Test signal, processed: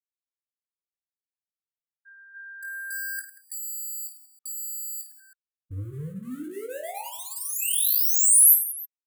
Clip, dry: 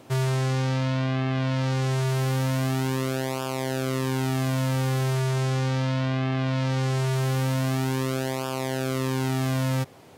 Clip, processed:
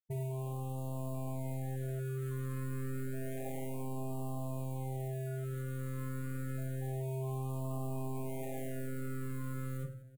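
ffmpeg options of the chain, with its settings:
-filter_complex "[0:a]afftfilt=real='re*gte(hypot(re,im),0.0794)':imag='im*gte(hypot(re,im),0.0794)':win_size=1024:overlap=0.75,aemphasis=mode=reproduction:type=50fm,bandreject=f=60:t=h:w=6,bandreject=f=120:t=h:w=6,bandreject=f=180:t=h:w=6,bandreject=f=240:t=h:w=6,bandreject=f=300:t=h:w=6,bandreject=f=360:t=h:w=6,aecho=1:1:7.3:0.84,adynamicequalizer=threshold=0.00282:dfrequency=1200:dqfactor=6.1:tfrequency=1200:tqfactor=6.1:attack=5:release=100:ratio=0.375:range=2.5:mode=boostabove:tftype=bell,acompressor=threshold=-25dB:ratio=5,asoftclip=type=hard:threshold=-32dB,asplit=2[a][b];[b]aecho=0:1:20|52|103.2|185.1|316.2:0.631|0.398|0.251|0.158|0.1[c];[a][c]amix=inputs=2:normalize=0,aexciter=amount=11.1:drive=8.2:freq=7.8k,afftfilt=real='re*(1-between(b*sr/1024,730*pow(1800/730,0.5+0.5*sin(2*PI*0.29*pts/sr))/1.41,730*pow(1800/730,0.5+0.5*sin(2*PI*0.29*pts/sr))*1.41))':imag='im*(1-between(b*sr/1024,730*pow(1800/730,0.5+0.5*sin(2*PI*0.29*pts/sr))/1.41,730*pow(1800/730,0.5+0.5*sin(2*PI*0.29*pts/sr))*1.41))':win_size=1024:overlap=0.75,volume=-4dB"

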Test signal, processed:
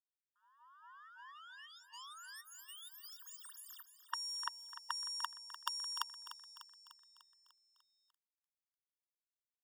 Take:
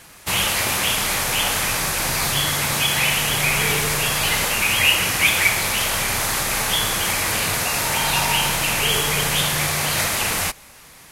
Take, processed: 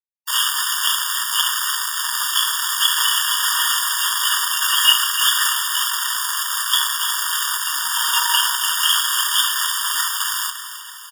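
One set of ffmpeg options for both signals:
-filter_complex "[0:a]acrusher=bits=2:mix=0:aa=0.5,asplit=8[a][b][c][d][e][f][g][h];[b]adelay=298,afreqshift=-36,volume=-11.5dB[i];[c]adelay=596,afreqshift=-72,volume=-16.1dB[j];[d]adelay=894,afreqshift=-108,volume=-20.7dB[k];[e]adelay=1192,afreqshift=-144,volume=-25.2dB[l];[f]adelay=1490,afreqshift=-180,volume=-29.8dB[m];[g]adelay=1788,afreqshift=-216,volume=-34.4dB[n];[h]adelay=2086,afreqshift=-252,volume=-39dB[o];[a][i][j][k][l][m][n][o]amix=inputs=8:normalize=0,afftfilt=real='re*eq(mod(floor(b*sr/1024/930),2),1)':imag='im*eq(mod(floor(b*sr/1024/930),2),1)':win_size=1024:overlap=0.75,volume=5.5dB"

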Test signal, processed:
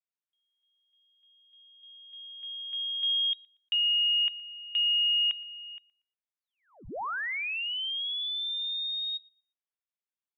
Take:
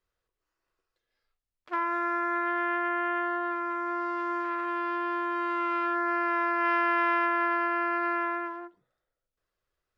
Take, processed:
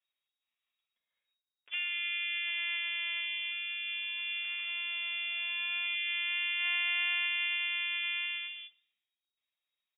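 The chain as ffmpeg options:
-filter_complex "[0:a]lowpass=f=3.2k:t=q:w=0.5098,lowpass=f=3.2k:t=q:w=0.6013,lowpass=f=3.2k:t=q:w=0.9,lowpass=f=3.2k:t=q:w=2.563,afreqshift=-3800,asplit=2[a][b];[b]adelay=118,lowpass=f=2.4k:p=1,volume=-21dB,asplit=2[c][d];[d]adelay=118,lowpass=f=2.4k:p=1,volume=0.38,asplit=2[e][f];[f]adelay=118,lowpass=f=2.4k:p=1,volume=0.38[g];[a][c][e][g]amix=inputs=4:normalize=0,volume=-6dB"

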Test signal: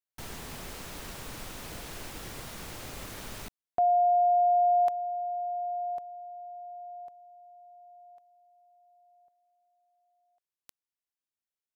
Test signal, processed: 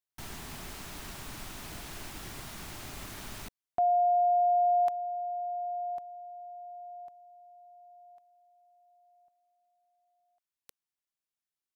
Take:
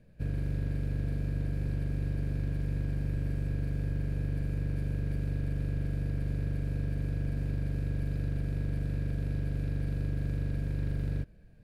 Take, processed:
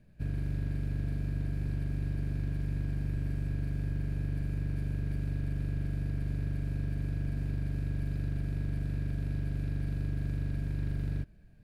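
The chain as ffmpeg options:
-af "equalizer=f=500:w=5.9:g=-12,volume=-1dB"

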